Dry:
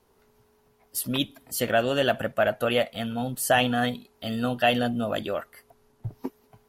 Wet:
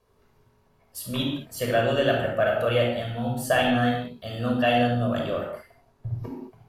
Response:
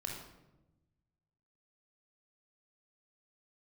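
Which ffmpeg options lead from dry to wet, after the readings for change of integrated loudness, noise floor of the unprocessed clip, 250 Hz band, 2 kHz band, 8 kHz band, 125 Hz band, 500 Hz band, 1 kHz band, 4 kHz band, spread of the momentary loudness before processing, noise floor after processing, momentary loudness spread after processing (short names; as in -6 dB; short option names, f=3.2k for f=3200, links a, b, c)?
+1.0 dB, -64 dBFS, +1.5 dB, 0.0 dB, -6.0 dB, +5.5 dB, +2.0 dB, +0.5 dB, -1.5 dB, 14 LU, -64 dBFS, 14 LU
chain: -filter_complex "[0:a]highshelf=f=7.6k:g=-7.5[a];[1:a]atrim=start_sample=2205,afade=t=out:st=0.26:d=0.01,atrim=end_sample=11907,asetrate=40572,aresample=44100[b];[a][b]afir=irnorm=-1:irlink=0"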